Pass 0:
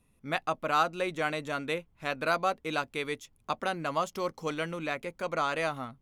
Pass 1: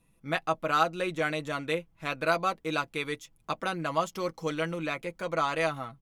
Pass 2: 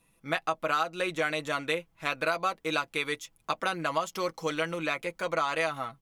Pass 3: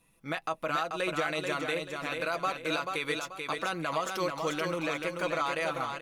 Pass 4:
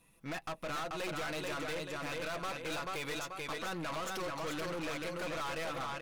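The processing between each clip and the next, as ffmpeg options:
ffmpeg -i in.wav -af "aecho=1:1:6.1:0.52" out.wav
ffmpeg -i in.wav -af "lowshelf=frequency=360:gain=-9.5,acompressor=threshold=-29dB:ratio=6,volume=5dB" out.wav
ffmpeg -i in.wav -filter_complex "[0:a]alimiter=limit=-20.5dB:level=0:latency=1:release=26,asplit=2[link_01][link_02];[link_02]aecho=0:1:436|872|1308|1744:0.562|0.191|0.065|0.0221[link_03];[link_01][link_03]amix=inputs=2:normalize=0" out.wav
ffmpeg -i in.wav -af "aeval=exprs='(tanh(79.4*val(0)+0.4)-tanh(0.4))/79.4':channel_layout=same,volume=2dB" out.wav

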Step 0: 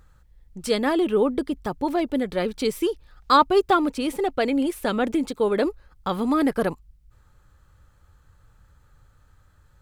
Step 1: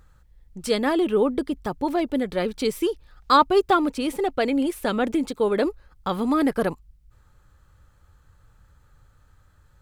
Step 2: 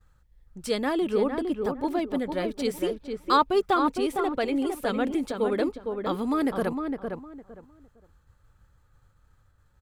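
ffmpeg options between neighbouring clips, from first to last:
ffmpeg -i in.wav -af anull out.wav
ffmpeg -i in.wav -filter_complex "[0:a]agate=range=-33dB:threshold=-52dB:ratio=3:detection=peak,asplit=2[link_01][link_02];[link_02]adelay=458,lowpass=frequency=1700:poles=1,volume=-5dB,asplit=2[link_03][link_04];[link_04]adelay=458,lowpass=frequency=1700:poles=1,volume=0.23,asplit=2[link_05][link_06];[link_06]adelay=458,lowpass=frequency=1700:poles=1,volume=0.23[link_07];[link_01][link_03][link_05][link_07]amix=inputs=4:normalize=0,volume=-4.5dB" out.wav

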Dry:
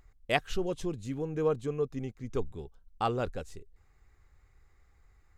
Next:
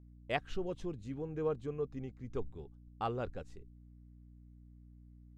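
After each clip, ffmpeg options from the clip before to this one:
ffmpeg -i in.wav -af "agate=range=-19dB:threshold=-50dB:ratio=16:detection=peak,aeval=exprs='val(0)+0.00355*(sin(2*PI*60*n/s)+sin(2*PI*2*60*n/s)/2+sin(2*PI*3*60*n/s)/3+sin(2*PI*4*60*n/s)/4+sin(2*PI*5*60*n/s)/5)':channel_layout=same,aemphasis=mode=reproduction:type=50fm,volume=-6.5dB" out.wav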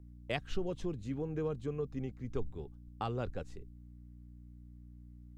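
ffmpeg -i in.wav -filter_complex "[0:a]acrossover=split=230|3000[link_01][link_02][link_03];[link_02]acompressor=threshold=-39dB:ratio=6[link_04];[link_01][link_04][link_03]amix=inputs=3:normalize=0,volume=4dB" out.wav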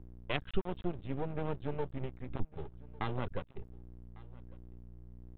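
ffmpeg -i in.wav -af "flanger=delay=0.7:depth=1.7:regen=-61:speed=1.3:shape=triangular,aresample=8000,aeval=exprs='max(val(0),0)':channel_layout=same,aresample=44100,aecho=1:1:1151:0.0668,volume=8.5dB" out.wav

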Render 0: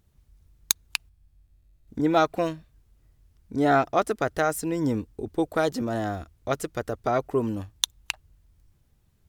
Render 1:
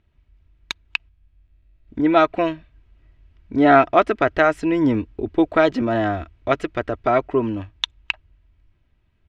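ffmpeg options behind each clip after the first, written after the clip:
ffmpeg -i in.wav -af "lowpass=frequency=2600:width_type=q:width=1.9,aecho=1:1:3.1:0.38,dynaudnorm=framelen=200:gausssize=17:maxgain=11.5dB" out.wav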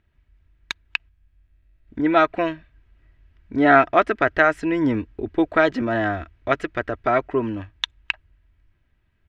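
ffmpeg -i in.wav -af "equalizer=frequency=1700:width=2.4:gain=7,volume=-2.5dB" out.wav

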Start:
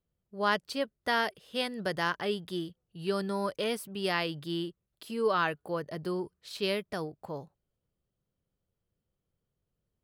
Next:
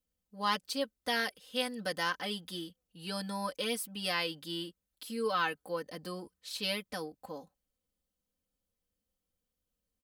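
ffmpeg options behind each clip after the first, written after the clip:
ffmpeg -i in.wav -af "highshelf=frequency=3000:gain=10,aecho=1:1:3.9:0.95,volume=-7.5dB" out.wav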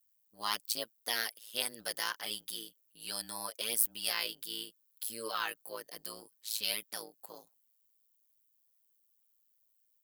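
ffmpeg -i in.wav -af "tremolo=f=110:d=0.947,aemphasis=mode=production:type=riaa,volume=-2dB" out.wav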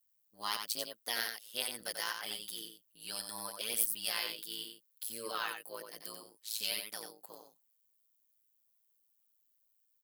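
ffmpeg -i in.wav -af "aecho=1:1:90:0.501,volume=-2.5dB" out.wav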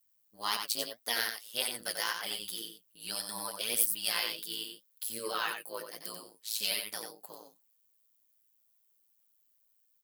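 ffmpeg -i in.wav -af "flanger=delay=4.1:depth=7.7:regen=55:speed=1.8:shape=triangular,volume=8dB" out.wav

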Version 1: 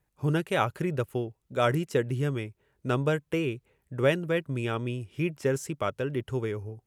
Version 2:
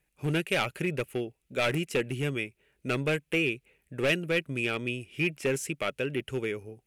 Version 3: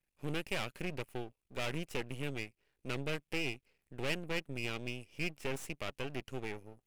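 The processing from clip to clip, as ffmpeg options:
ffmpeg -i in.wav -af "asoftclip=type=hard:threshold=-22dB,equalizer=frequency=100:width_type=o:width=0.67:gain=-11,equalizer=frequency=1000:width_type=o:width=0.67:gain=-7,equalizer=frequency=2500:width_type=o:width=0.67:gain=11,equalizer=frequency=10000:width_type=o:width=0.67:gain=6" out.wav
ffmpeg -i in.wav -af "aeval=exprs='max(val(0),0)':channel_layout=same,volume=-6dB" out.wav

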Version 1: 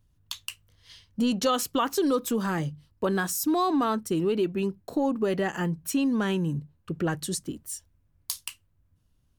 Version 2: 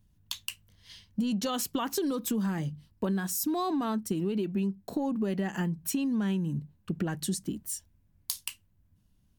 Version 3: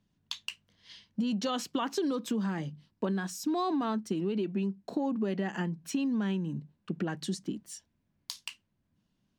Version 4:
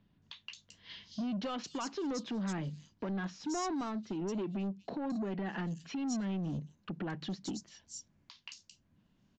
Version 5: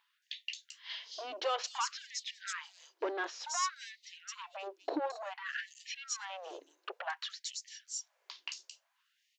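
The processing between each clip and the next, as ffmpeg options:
ffmpeg -i in.wav -af "equalizer=frequency=200:width_type=o:width=0.33:gain=10,equalizer=frequency=500:width_type=o:width=0.33:gain=-4,equalizer=frequency=1250:width_type=o:width=0.33:gain=-5,equalizer=frequency=16000:width_type=o:width=0.33:gain=6,acompressor=threshold=-27dB:ratio=6" out.wav
ffmpeg -i in.wav -filter_complex "[0:a]acrossover=split=150 6500:gain=0.126 1 0.1[link_01][link_02][link_03];[link_01][link_02][link_03]amix=inputs=3:normalize=0" out.wav
ffmpeg -i in.wav -filter_complex "[0:a]alimiter=level_in=6dB:limit=-24dB:level=0:latency=1:release=417,volume=-6dB,aresample=16000,asoftclip=type=tanh:threshold=-37.5dB,aresample=44100,acrossover=split=4300[link_01][link_02];[link_02]adelay=220[link_03];[link_01][link_03]amix=inputs=2:normalize=0,volume=5.5dB" out.wav
ffmpeg -i in.wav -af "afftfilt=real='re*gte(b*sr/1024,290*pow(1800/290,0.5+0.5*sin(2*PI*0.56*pts/sr)))':imag='im*gte(b*sr/1024,290*pow(1800/290,0.5+0.5*sin(2*PI*0.56*pts/sr)))':win_size=1024:overlap=0.75,volume=6.5dB" out.wav

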